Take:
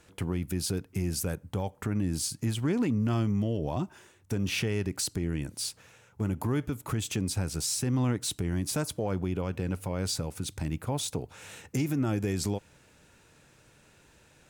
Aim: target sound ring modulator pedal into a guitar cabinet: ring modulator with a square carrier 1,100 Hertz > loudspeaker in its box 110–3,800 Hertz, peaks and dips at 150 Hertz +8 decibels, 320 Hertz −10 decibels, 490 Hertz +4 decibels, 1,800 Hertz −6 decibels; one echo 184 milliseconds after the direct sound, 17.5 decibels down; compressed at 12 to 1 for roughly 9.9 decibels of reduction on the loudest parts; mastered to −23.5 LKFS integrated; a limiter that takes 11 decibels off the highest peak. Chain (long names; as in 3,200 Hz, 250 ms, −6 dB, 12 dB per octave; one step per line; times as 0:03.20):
downward compressor 12 to 1, threshold −34 dBFS
brickwall limiter −34.5 dBFS
single-tap delay 184 ms −17.5 dB
ring modulator with a square carrier 1,100 Hz
loudspeaker in its box 110–3,800 Hz, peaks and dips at 150 Hz +8 dB, 320 Hz −10 dB, 490 Hz +4 dB, 1,800 Hz −6 dB
level +21 dB